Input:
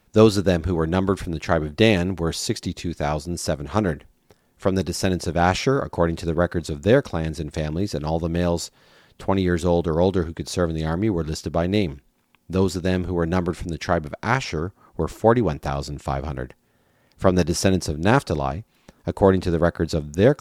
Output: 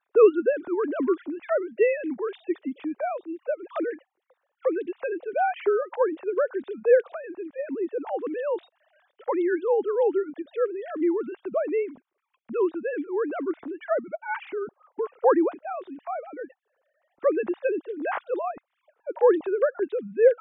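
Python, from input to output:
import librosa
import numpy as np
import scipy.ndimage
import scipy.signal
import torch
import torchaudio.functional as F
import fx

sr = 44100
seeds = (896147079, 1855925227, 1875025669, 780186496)

y = fx.sine_speech(x, sr)
y = fx.high_shelf(y, sr, hz=2200.0, db=-9.5)
y = y * librosa.db_to_amplitude(-3.5)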